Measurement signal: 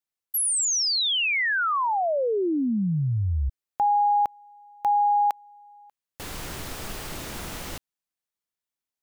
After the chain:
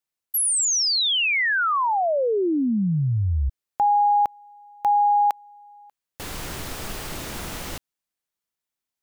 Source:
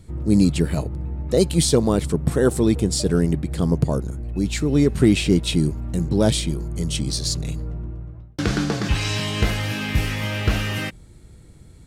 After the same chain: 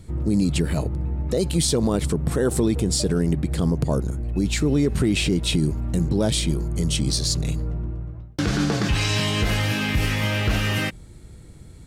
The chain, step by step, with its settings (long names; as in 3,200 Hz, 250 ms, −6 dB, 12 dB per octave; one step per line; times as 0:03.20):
brickwall limiter −14.5 dBFS
level +2.5 dB